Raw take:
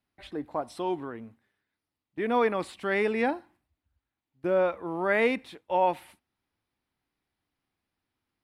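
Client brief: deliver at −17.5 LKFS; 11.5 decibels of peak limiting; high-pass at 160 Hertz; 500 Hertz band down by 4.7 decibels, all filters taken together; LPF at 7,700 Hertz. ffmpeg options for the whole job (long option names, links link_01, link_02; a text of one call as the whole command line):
ffmpeg -i in.wav -af "highpass=160,lowpass=7700,equalizer=frequency=500:width_type=o:gain=-5.5,volume=19.5dB,alimiter=limit=-5.5dB:level=0:latency=1" out.wav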